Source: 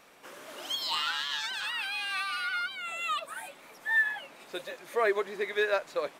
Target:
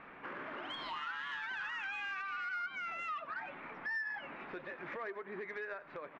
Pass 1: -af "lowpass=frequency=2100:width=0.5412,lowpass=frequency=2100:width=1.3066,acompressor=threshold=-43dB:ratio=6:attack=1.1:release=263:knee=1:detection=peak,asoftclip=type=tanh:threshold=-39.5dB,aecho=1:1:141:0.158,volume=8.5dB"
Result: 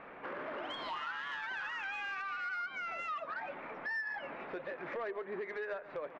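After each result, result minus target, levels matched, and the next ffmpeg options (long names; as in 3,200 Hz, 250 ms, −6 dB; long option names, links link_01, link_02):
echo 45 ms late; 500 Hz band +4.5 dB
-af "lowpass=frequency=2100:width=0.5412,lowpass=frequency=2100:width=1.3066,acompressor=threshold=-43dB:ratio=6:attack=1.1:release=263:knee=1:detection=peak,asoftclip=type=tanh:threshold=-39.5dB,aecho=1:1:96:0.158,volume=8.5dB"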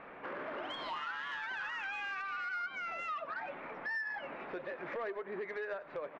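500 Hz band +4.5 dB
-af "lowpass=frequency=2100:width=0.5412,lowpass=frequency=2100:width=1.3066,acompressor=threshold=-43dB:ratio=6:attack=1.1:release=263:knee=1:detection=peak,equalizer=frequency=560:width_type=o:width=1.1:gain=-8,asoftclip=type=tanh:threshold=-39.5dB,aecho=1:1:96:0.158,volume=8.5dB"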